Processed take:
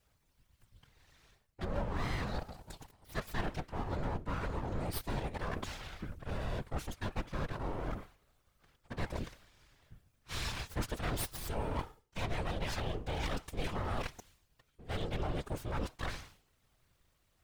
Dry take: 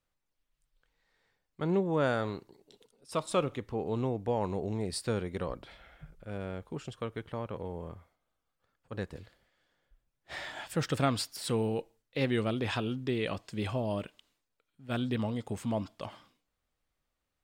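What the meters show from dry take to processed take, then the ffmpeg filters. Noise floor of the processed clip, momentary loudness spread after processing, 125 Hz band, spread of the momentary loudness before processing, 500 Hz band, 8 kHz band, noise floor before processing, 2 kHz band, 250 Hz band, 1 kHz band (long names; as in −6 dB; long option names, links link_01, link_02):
−75 dBFS, 8 LU, −3.0 dB, 15 LU, −8.5 dB, −3.0 dB, −84 dBFS, −2.0 dB, −8.5 dB, −2.5 dB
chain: -af "bandreject=frequency=422.6:width_type=h:width=4,bandreject=frequency=845.2:width_type=h:width=4,bandreject=frequency=1267.8:width_type=h:width=4,bandreject=frequency=1690.4:width_type=h:width=4,bandreject=frequency=2113:width_type=h:width=4,bandreject=frequency=2535.6:width_type=h:width=4,bandreject=frequency=2958.2:width_type=h:width=4,areverse,acompressor=threshold=-44dB:ratio=6,areverse,aeval=exprs='abs(val(0))':channel_layout=same,afftfilt=real='hypot(re,im)*cos(2*PI*random(0))':imag='hypot(re,im)*sin(2*PI*random(1))':win_size=512:overlap=0.75,volume=17.5dB"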